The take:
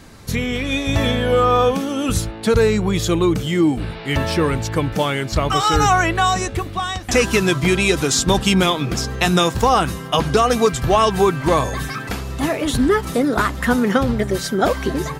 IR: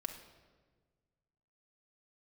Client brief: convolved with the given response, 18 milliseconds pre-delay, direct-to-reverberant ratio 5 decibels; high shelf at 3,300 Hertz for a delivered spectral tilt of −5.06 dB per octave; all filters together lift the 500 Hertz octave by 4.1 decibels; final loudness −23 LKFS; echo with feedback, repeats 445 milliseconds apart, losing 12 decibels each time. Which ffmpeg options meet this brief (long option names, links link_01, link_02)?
-filter_complex "[0:a]equalizer=frequency=500:width_type=o:gain=5,highshelf=frequency=3300:gain=-5.5,aecho=1:1:445|890|1335:0.251|0.0628|0.0157,asplit=2[link_01][link_02];[1:a]atrim=start_sample=2205,adelay=18[link_03];[link_02][link_03]afir=irnorm=-1:irlink=0,volume=-4dB[link_04];[link_01][link_04]amix=inputs=2:normalize=0,volume=-8.5dB"